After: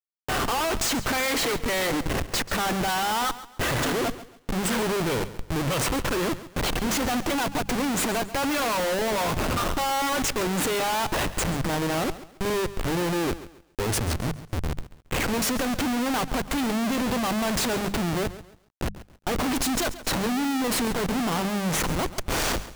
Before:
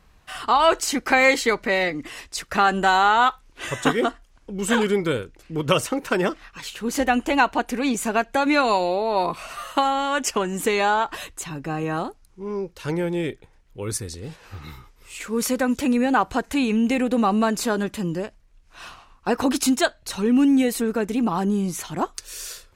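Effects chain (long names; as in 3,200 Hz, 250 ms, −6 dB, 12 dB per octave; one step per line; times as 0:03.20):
comparator with hysteresis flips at −32.5 dBFS
mains-hum notches 50/100/150/200 Hz
feedback echo at a low word length 137 ms, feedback 35%, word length 8 bits, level −15 dB
level −2 dB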